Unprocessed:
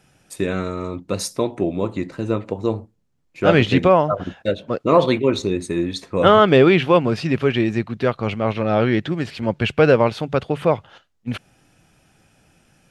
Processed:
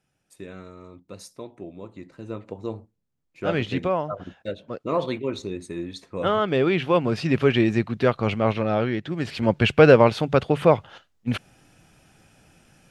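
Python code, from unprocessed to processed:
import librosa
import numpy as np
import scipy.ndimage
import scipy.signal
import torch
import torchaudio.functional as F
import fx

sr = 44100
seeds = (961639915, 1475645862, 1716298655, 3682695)

y = fx.gain(x, sr, db=fx.line((1.89, -17.0), (2.52, -10.0), (6.49, -10.0), (7.41, -0.5), (8.48, -0.5), (9.02, -9.0), (9.34, 1.0)))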